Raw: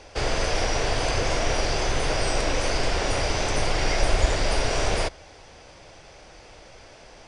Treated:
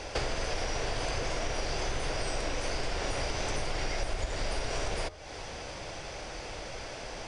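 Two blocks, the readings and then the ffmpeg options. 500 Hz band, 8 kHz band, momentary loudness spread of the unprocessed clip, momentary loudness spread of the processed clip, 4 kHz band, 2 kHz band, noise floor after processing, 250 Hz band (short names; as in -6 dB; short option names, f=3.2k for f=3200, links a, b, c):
-8.5 dB, -8.0 dB, 2 LU, 7 LU, -8.0 dB, -8.0 dB, -42 dBFS, -8.5 dB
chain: -af "acompressor=threshold=-37dB:ratio=6,bandreject=f=87.83:t=h:w=4,bandreject=f=175.66:t=h:w=4,bandreject=f=263.49:t=h:w=4,bandreject=f=351.32:t=h:w=4,bandreject=f=439.15:t=h:w=4,bandreject=f=526.98:t=h:w=4,bandreject=f=614.81:t=h:w=4,bandreject=f=702.64:t=h:w=4,bandreject=f=790.47:t=h:w=4,bandreject=f=878.3:t=h:w=4,bandreject=f=966.13:t=h:w=4,bandreject=f=1.05396k:t=h:w=4,bandreject=f=1.14179k:t=h:w=4,bandreject=f=1.22962k:t=h:w=4,volume=7dB"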